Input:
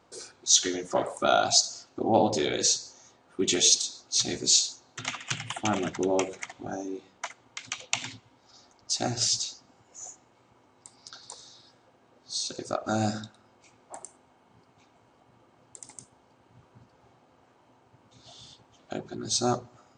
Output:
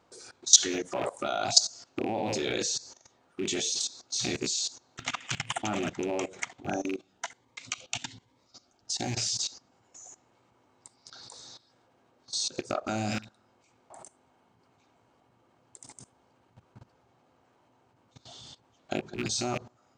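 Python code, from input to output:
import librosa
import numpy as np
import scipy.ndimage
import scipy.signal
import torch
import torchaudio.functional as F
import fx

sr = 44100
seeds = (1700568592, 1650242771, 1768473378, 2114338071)

y = fx.rattle_buzz(x, sr, strikes_db=-38.0, level_db=-27.0)
y = fx.level_steps(y, sr, step_db=18)
y = fx.notch_cascade(y, sr, direction='rising', hz=1.2, at=(6.81, 9.15))
y = y * 10.0 ** (5.5 / 20.0)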